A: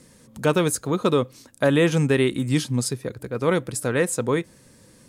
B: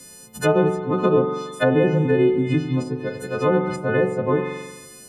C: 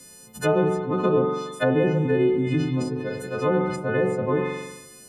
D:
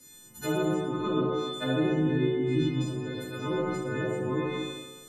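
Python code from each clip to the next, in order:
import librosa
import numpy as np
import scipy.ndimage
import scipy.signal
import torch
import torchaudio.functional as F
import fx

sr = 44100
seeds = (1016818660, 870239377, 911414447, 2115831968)

y1 = fx.freq_snap(x, sr, grid_st=3)
y1 = fx.rev_spring(y1, sr, rt60_s=1.2, pass_ms=(43,), chirp_ms=65, drr_db=5.0)
y1 = fx.env_lowpass_down(y1, sr, base_hz=1000.0, full_db=-16.0)
y1 = F.gain(torch.from_numpy(y1), 2.0).numpy()
y2 = fx.sustainer(y1, sr, db_per_s=52.0)
y2 = F.gain(torch.from_numpy(y2), -3.5).numpy()
y3 = fx.comb_fb(y2, sr, f0_hz=320.0, decay_s=0.2, harmonics='all', damping=0.0, mix_pct=80)
y3 = fx.rev_plate(y3, sr, seeds[0], rt60_s=1.1, hf_ratio=0.75, predelay_ms=0, drr_db=-5.0)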